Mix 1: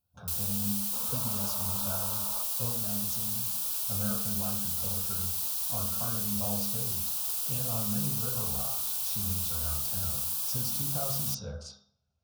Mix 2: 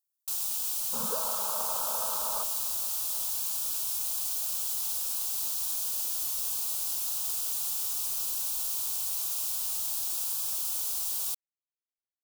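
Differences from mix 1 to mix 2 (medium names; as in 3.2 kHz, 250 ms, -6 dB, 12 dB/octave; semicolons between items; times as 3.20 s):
speech: muted; second sound +7.5 dB; reverb: off; master: add peaking EQ 7 kHz +4.5 dB 0.6 oct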